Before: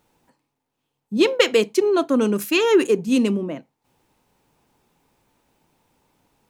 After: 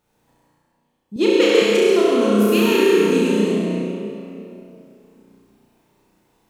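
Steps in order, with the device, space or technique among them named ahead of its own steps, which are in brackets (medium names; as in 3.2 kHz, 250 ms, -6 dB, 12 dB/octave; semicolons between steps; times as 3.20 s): tunnel (flutter echo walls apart 5.7 m, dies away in 0.92 s; reverberation RT60 2.7 s, pre-delay 67 ms, DRR -3.5 dB); 1.16–1.62 s: resonant low shelf 220 Hz -13.5 dB, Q 1.5; trim -6 dB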